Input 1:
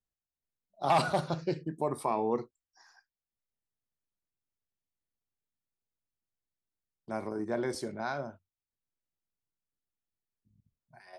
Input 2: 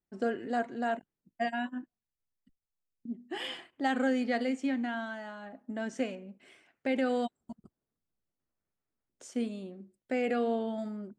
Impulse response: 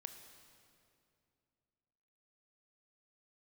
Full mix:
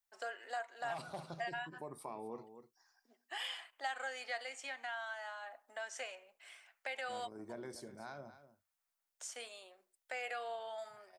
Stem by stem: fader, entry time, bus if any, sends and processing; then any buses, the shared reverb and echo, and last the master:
-13.0 dB, 0.00 s, no send, echo send -14 dB, dry
+1.5 dB, 0.00 s, no send, no echo send, HPF 710 Hz 24 dB/oct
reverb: off
echo: echo 0.245 s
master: high shelf 6700 Hz +7 dB; compressor 2:1, threshold -43 dBFS, peak gain reduction 9.5 dB

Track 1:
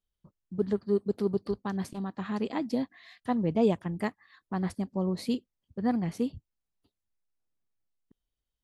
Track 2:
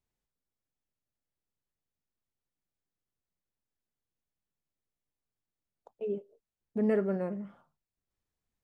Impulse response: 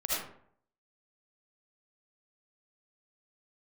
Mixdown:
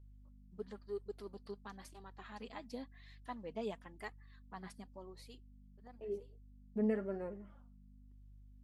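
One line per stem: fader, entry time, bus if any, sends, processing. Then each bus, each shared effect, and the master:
-6.0 dB, 0.00 s, no send, HPF 890 Hz 6 dB/oct; auto duck -16 dB, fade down 1.05 s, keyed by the second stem
-4.5 dB, 0.00 s, no send, hum 50 Hz, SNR 11 dB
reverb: off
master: flange 0.96 Hz, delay 2 ms, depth 3 ms, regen +24%

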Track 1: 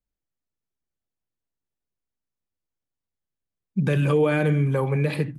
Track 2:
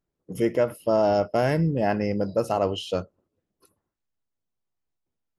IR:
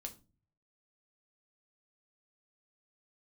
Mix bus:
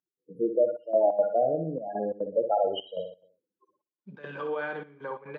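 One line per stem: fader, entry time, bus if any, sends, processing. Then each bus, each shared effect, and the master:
-14.5 dB, 0.30 s, send -3.5 dB, echo send -6 dB, dry
-0.5 dB, 0.00 s, no send, echo send -7.5 dB, high shelf 3000 Hz +5.5 dB; loudest bins only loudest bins 8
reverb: on, RT60 0.35 s, pre-delay 5 ms
echo: feedback echo 62 ms, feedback 45%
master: step gate "x.xxxxxxx..x" 177 bpm -12 dB; speaker cabinet 370–4300 Hz, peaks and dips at 950 Hz +8 dB, 1500 Hz +8 dB, 2400 Hz -6 dB

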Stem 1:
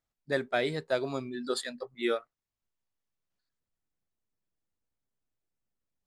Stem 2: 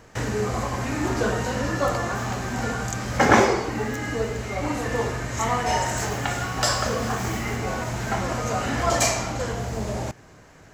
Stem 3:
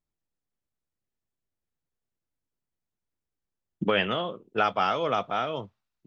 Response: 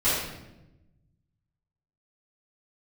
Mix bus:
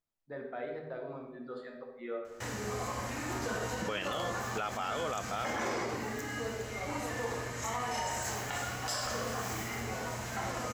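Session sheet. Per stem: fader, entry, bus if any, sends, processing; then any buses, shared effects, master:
-7.0 dB, 0.00 s, send -14 dB, LPF 1300 Hz 12 dB/oct; notches 50/100/150/200/250/300/350 Hz; limiter -25 dBFS, peak gain reduction 6.5 dB
-10.0 dB, 2.25 s, send -17 dB, high shelf 10000 Hz +8 dB
-2.5 dB, 0.00 s, no send, dry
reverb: on, RT60 0.95 s, pre-delay 4 ms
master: low shelf 360 Hz -7.5 dB; limiter -25.5 dBFS, peak gain reduction 14.5 dB

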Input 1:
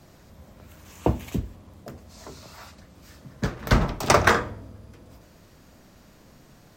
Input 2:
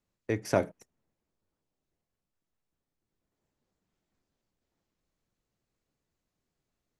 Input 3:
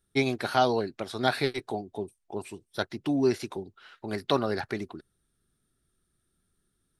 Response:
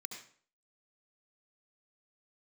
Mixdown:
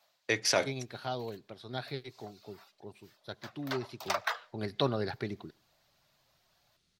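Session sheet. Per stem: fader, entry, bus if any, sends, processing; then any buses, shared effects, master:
-14.5 dB, 0.00 s, send -22.5 dB, steep high-pass 590 Hz 48 dB/oct; reverb removal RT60 0.91 s; high shelf 9500 Hz +6.5 dB; auto duck -13 dB, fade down 0.25 s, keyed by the second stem
+2.5 dB, 0.00 s, no send, weighting filter ITU-R 468; limiter -18.5 dBFS, peak gain reduction 5 dB
3.87 s -16 dB -> 4.29 s -7.5 dB, 0.50 s, send -20.5 dB, dry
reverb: on, RT60 0.50 s, pre-delay 63 ms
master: ten-band EQ 125 Hz +10 dB, 500 Hz +3 dB, 4000 Hz +7 dB, 8000 Hz -8 dB

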